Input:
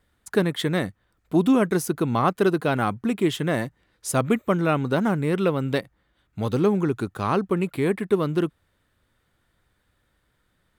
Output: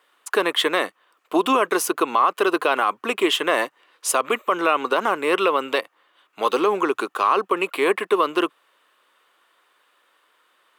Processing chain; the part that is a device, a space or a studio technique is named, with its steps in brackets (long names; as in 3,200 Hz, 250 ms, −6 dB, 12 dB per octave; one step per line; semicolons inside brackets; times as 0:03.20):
laptop speaker (high-pass filter 380 Hz 24 dB per octave; parametric band 1,100 Hz +11 dB 0.44 octaves; parametric band 2,800 Hz +9 dB 0.47 octaves; brickwall limiter −15 dBFS, peak gain reduction 12.5 dB)
level +6.5 dB